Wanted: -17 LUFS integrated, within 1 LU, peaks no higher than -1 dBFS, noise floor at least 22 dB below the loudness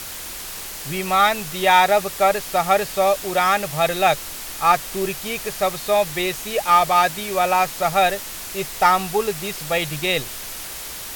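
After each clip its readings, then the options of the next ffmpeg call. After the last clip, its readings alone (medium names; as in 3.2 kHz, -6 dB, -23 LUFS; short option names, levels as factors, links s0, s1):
noise floor -33 dBFS; noise floor target -42 dBFS; loudness -20.0 LUFS; peak level -2.0 dBFS; loudness target -17.0 LUFS
-> -af "afftdn=nr=9:nf=-33"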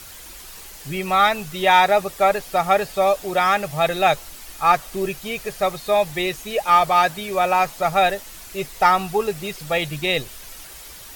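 noise floor -40 dBFS; noise floor target -42 dBFS
-> -af "afftdn=nr=6:nf=-40"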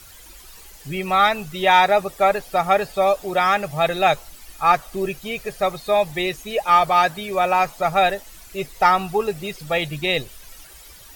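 noise floor -44 dBFS; loudness -20.0 LUFS; peak level -2.5 dBFS; loudness target -17.0 LUFS
-> -af "volume=1.41,alimiter=limit=0.891:level=0:latency=1"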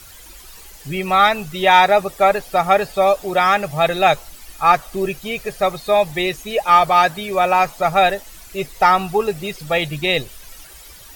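loudness -17.0 LUFS; peak level -1.0 dBFS; noise floor -41 dBFS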